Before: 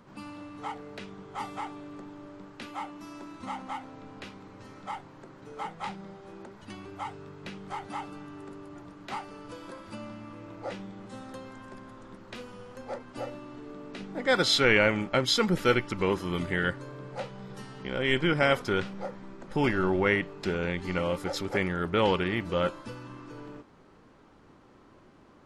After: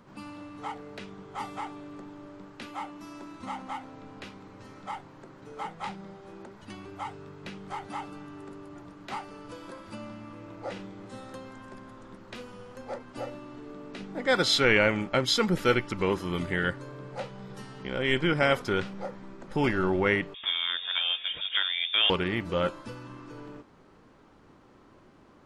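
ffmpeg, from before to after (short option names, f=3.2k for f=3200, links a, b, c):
-filter_complex "[0:a]asettb=1/sr,asplit=3[a][b][c];[a]atrim=end=10.714[d];[b]atrim=start=10.71:end=11.35,asetpts=PTS-STARTPTS,afade=t=in:d=0.004:c=qsin,afade=t=out:st=0.636:d=0.004:c=qsin,asplit=2[e][f];[f]adelay=48,volume=-7dB[g];[e][g]amix=inputs=2:normalize=0,atrim=end_sample=28224[h];[c]atrim=start=11.346[i];[d][h]acrossfade=d=0.004:c1=hsin:c2=qsin[j];[j][i]acrossfade=d=0.004:c1=qsin:c2=hsin,asettb=1/sr,asplit=3[k][l][m];[k]atrim=end=20.344[n];[l]atrim=start=20.34:end=22.1,asetpts=PTS-STARTPTS,afade=t=in:d=0.004:c=qsin,afade=t=out:st=1.756:d=0.004:c=qsin,lowpass=f=3.1k:t=q:w=0.5098,lowpass=f=3.1k:t=q:w=0.6013,lowpass=f=3.1k:t=q:w=0.9,lowpass=f=3.1k:t=q:w=2.563,afreqshift=-3700[o];[m]atrim=start=22.096[p];[n][o]acrossfade=d=0.004:c1=hsin:c2=qsin[q];[q][p]acrossfade=d=0.004:c1=qsin:c2=hsin"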